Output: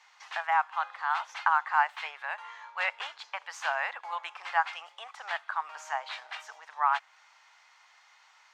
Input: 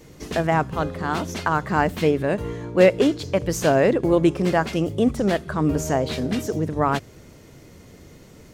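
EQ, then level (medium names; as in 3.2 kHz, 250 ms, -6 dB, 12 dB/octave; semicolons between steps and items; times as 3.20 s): Chebyshev high-pass 820 Hz, order 5; dynamic bell 5.3 kHz, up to -6 dB, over -48 dBFS, Q 1.1; distance through air 150 m; 0.0 dB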